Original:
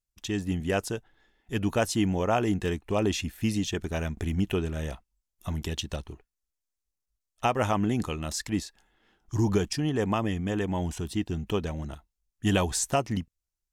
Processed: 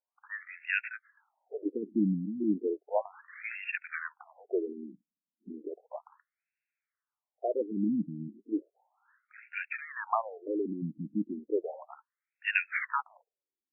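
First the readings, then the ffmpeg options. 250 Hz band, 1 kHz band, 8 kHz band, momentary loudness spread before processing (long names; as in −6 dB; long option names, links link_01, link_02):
−5.5 dB, −6.0 dB, below −40 dB, 11 LU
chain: -af "acrusher=samples=4:mix=1:aa=0.000001,crystalizer=i=6:c=0,afftfilt=real='re*between(b*sr/1024,220*pow(2000/220,0.5+0.5*sin(2*PI*0.34*pts/sr))/1.41,220*pow(2000/220,0.5+0.5*sin(2*PI*0.34*pts/sr))*1.41)':imag='im*between(b*sr/1024,220*pow(2000/220,0.5+0.5*sin(2*PI*0.34*pts/sr))/1.41,220*pow(2000/220,0.5+0.5*sin(2*PI*0.34*pts/sr))*1.41)':win_size=1024:overlap=0.75"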